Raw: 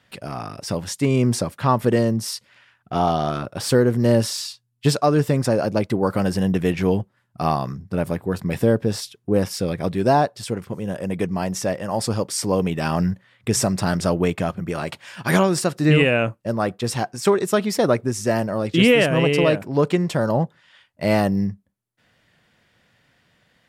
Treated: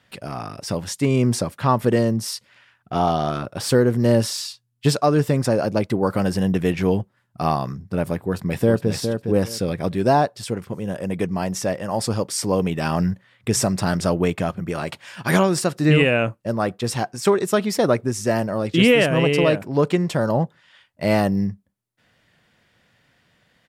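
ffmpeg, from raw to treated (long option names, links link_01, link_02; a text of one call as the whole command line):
ffmpeg -i in.wav -filter_complex "[0:a]asplit=2[link_01][link_02];[link_02]afade=type=in:start_time=8.23:duration=0.01,afade=type=out:start_time=8.9:duration=0.01,aecho=0:1:410|820|1230:0.473151|0.0946303|0.0189261[link_03];[link_01][link_03]amix=inputs=2:normalize=0" out.wav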